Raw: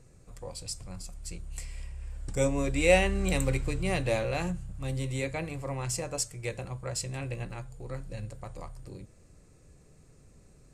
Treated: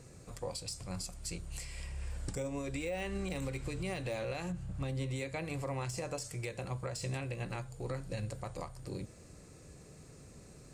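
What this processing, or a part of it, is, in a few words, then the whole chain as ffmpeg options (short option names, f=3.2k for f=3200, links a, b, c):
broadcast voice chain: -filter_complex "[0:a]asettb=1/sr,asplit=3[a][b][c];[a]atrim=end=4.524[d];[b]atrim=start=4.52:end=5.16,asetpts=PTS-STARTPTS,afade=t=in:d=0.004:c=qsin,afade=t=out:st=0.636:d=0.004:c=qsin,aemphasis=mode=reproduction:type=cd[e];[c]atrim=start=5.156[f];[d][e]acrossfade=d=0.004:c1=hsin:c2=qsin[g];[g][f]acrossfade=d=0.004:c1=qsin:c2=hsin,highpass=f=99:p=1,deesser=0.8,acompressor=threshold=-34dB:ratio=6,equalizer=f=4.5k:t=o:w=0.77:g=2.5,alimiter=level_in=10.5dB:limit=-24dB:level=0:latency=1:release=429,volume=-10.5dB,volume=6dB"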